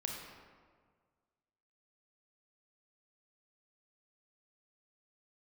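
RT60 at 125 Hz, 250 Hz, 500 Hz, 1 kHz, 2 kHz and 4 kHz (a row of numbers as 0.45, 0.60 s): 1.9, 1.7, 1.8, 1.6, 1.3, 0.95 s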